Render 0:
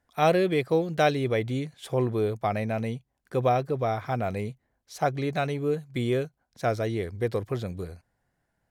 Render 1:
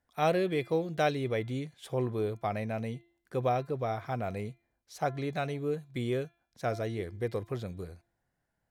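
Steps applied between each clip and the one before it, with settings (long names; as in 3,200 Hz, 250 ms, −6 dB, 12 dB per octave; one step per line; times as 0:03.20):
hum removal 342.3 Hz, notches 12
level −5.5 dB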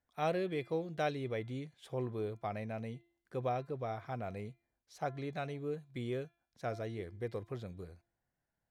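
high-shelf EQ 9,200 Hz −8 dB
level −6.5 dB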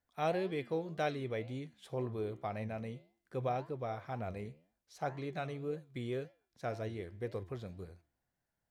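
flanger 1.9 Hz, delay 8.5 ms, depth 7.7 ms, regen +83%
level +4.5 dB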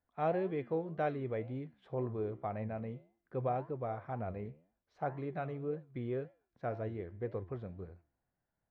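low-pass filter 1,600 Hz 12 dB per octave
level +1 dB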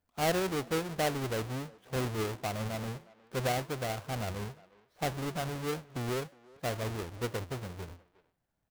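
each half-wave held at its own peak
far-end echo of a speakerphone 360 ms, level −20 dB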